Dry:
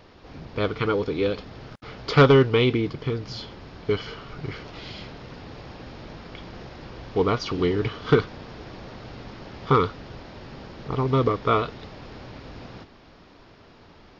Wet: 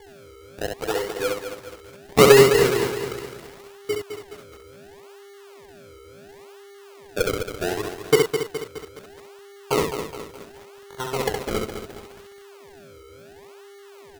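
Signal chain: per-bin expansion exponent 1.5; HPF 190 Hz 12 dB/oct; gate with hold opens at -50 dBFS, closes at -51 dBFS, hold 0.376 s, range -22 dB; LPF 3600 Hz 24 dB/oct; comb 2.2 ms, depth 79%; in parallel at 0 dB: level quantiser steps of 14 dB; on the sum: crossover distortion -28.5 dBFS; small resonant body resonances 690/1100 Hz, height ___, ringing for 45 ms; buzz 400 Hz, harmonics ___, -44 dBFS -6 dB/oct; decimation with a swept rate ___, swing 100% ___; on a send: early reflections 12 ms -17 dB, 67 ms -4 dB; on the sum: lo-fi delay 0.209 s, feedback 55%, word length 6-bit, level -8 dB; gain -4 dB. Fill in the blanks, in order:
8 dB, 3, 34×, 0.71 Hz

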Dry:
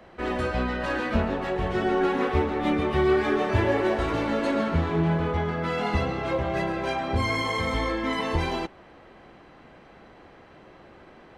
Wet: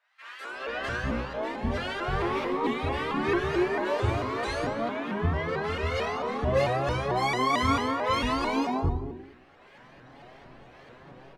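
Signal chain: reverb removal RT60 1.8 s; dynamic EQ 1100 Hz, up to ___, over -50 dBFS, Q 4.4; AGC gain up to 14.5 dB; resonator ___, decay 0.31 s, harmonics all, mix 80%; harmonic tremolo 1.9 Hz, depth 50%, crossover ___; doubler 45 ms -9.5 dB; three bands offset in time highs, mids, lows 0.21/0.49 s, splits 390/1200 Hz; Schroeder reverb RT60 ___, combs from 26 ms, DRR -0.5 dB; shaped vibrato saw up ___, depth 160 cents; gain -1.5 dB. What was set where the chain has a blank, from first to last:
+8 dB, 130 Hz, 890 Hz, 0.75 s, 4.5 Hz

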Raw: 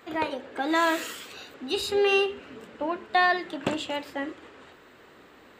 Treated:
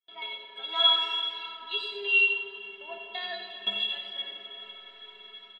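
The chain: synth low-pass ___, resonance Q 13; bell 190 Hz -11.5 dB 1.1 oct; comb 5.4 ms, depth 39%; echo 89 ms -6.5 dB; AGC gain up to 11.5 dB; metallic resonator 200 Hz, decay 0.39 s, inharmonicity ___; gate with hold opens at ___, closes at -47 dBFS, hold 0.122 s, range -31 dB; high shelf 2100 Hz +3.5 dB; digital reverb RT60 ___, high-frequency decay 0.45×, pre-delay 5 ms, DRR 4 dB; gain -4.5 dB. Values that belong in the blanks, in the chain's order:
3300 Hz, 0.03, -43 dBFS, 4.6 s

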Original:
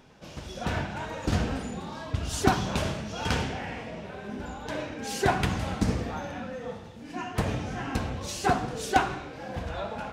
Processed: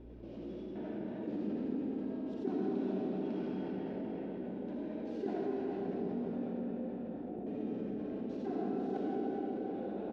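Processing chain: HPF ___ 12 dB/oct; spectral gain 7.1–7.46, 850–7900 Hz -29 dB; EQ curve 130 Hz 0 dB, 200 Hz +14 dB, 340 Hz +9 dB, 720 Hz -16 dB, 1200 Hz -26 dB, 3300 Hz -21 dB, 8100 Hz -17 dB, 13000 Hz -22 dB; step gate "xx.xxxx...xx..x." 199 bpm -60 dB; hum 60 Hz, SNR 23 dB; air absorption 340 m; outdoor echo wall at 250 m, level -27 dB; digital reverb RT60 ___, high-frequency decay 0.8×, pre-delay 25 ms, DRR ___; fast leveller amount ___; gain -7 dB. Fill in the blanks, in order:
670 Hz, 4.3 s, -8.5 dB, 50%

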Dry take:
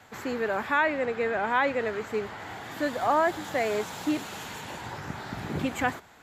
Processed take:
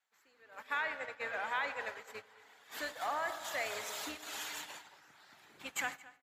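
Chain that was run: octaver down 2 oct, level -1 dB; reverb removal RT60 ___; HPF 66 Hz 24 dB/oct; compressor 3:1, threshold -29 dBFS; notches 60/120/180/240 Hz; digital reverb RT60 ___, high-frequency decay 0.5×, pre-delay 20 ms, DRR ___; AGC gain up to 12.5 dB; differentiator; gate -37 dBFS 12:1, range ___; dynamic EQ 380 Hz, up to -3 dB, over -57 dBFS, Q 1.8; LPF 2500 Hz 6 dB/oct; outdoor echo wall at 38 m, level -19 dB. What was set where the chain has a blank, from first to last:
0.92 s, 3.6 s, 5.5 dB, -17 dB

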